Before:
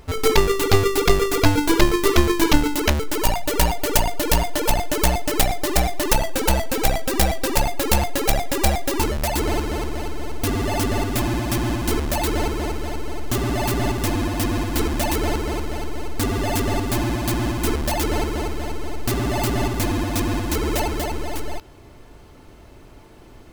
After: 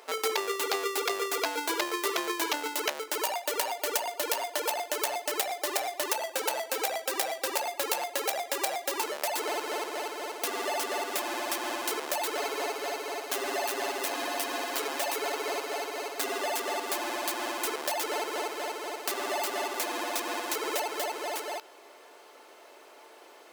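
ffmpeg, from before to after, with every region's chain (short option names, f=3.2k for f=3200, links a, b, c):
-filter_complex "[0:a]asettb=1/sr,asplit=3[a][b][c];[a]atrim=end=12.374[d];[b]atrim=start=12.37:end=16.38,asetpts=PTS-STARTPTS,afade=t=in:d=0.004:c=qsin,afade=t=out:st=4.006:d=0.004:c=qsin,aeval=exprs='clip(val(0),-1,0.112)':c=same,aecho=1:1:7.3:0.65,atrim=end_sample=176841[e];[c]atrim=start=16.376[f];[d][e]acrossfade=d=0.004:c1=hsin:c2=qsin[g];[g][f]acrossfade=d=0.004:c1=qsin:c2=hsin,highpass=f=450:w=0.5412,highpass=f=450:w=1.3066,acompressor=threshold=-29dB:ratio=3"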